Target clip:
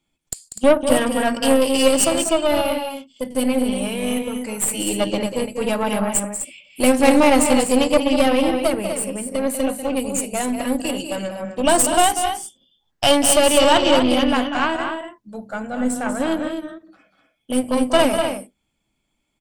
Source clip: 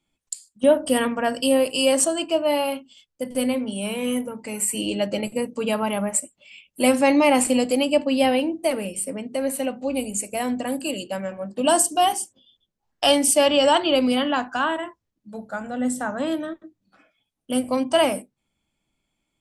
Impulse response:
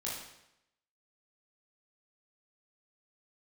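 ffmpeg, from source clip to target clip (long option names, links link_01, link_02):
-af "aecho=1:1:192.4|247.8:0.355|0.398,aeval=exprs='0.631*(cos(1*acos(clip(val(0)/0.631,-1,1)))-cos(1*PI/2))+0.0708*(cos(6*acos(clip(val(0)/0.631,-1,1)))-cos(6*PI/2))':channel_layout=same,volume=2dB"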